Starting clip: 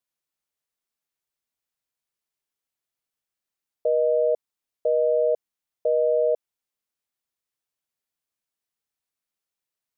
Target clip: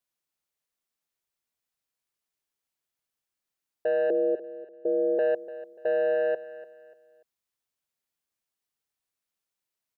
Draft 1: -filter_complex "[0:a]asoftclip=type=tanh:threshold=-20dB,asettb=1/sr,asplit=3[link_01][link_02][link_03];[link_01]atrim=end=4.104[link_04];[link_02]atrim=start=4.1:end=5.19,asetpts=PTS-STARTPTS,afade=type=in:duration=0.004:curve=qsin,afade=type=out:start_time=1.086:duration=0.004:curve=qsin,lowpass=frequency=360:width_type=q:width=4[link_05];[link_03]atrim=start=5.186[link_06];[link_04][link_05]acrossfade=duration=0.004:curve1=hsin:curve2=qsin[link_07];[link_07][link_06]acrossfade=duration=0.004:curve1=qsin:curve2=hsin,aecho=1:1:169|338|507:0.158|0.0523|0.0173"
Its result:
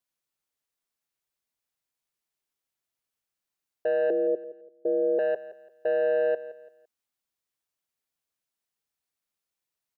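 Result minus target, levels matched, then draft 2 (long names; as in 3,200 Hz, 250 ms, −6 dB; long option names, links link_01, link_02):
echo 124 ms early
-filter_complex "[0:a]asoftclip=type=tanh:threshold=-20dB,asettb=1/sr,asplit=3[link_01][link_02][link_03];[link_01]atrim=end=4.104[link_04];[link_02]atrim=start=4.1:end=5.19,asetpts=PTS-STARTPTS,afade=type=in:duration=0.004:curve=qsin,afade=type=out:start_time=1.086:duration=0.004:curve=qsin,lowpass=frequency=360:width_type=q:width=4[link_05];[link_03]atrim=start=5.186[link_06];[link_04][link_05]acrossfade=duration=0.004:curve1=hsin:curve2=qsin[link_07];[link_07][link_06]acrossfade=duration=0.004:curve1=qsin:curve2=hsin,aecho=1:1:293|586|879:0.158|0.0523|0.0173"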